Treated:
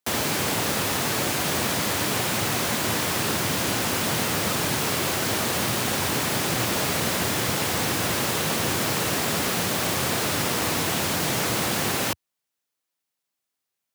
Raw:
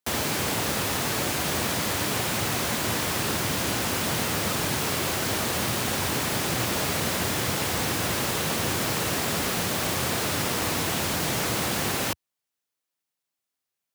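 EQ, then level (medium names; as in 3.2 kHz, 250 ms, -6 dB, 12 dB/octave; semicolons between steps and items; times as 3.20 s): high-pass 84 Hz; +2.0 dB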